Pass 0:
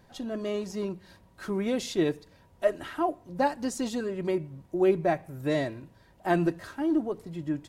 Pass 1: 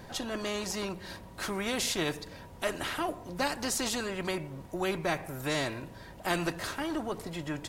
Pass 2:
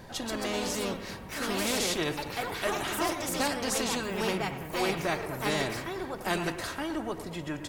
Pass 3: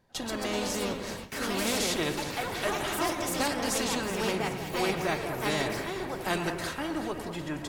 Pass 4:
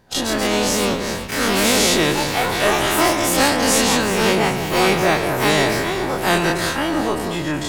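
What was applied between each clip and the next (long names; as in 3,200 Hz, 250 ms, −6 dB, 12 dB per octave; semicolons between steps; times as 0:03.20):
every bin compressed towards the loudest bin 2 to 1; level −4 dB
bucket-brigade delay 111 ms, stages 2,048, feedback 63%, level −12 dB; delay with pitch and tempo change per echo 157 ms, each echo +3 semitones, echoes 2
on a send: delay that swaps between a low-pass and a high-pass 187 ms, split 1,800 Hz, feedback 71%, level −8.5 dB; on the sum: noise gate with hold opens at −29 dBFS
every bin's largest magnitude spread in time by 60 ms; level +9 dB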